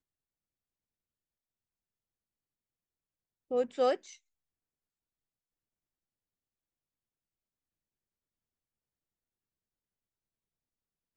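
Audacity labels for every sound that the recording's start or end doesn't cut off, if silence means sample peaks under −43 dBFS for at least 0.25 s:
3.510000	4.130000	sound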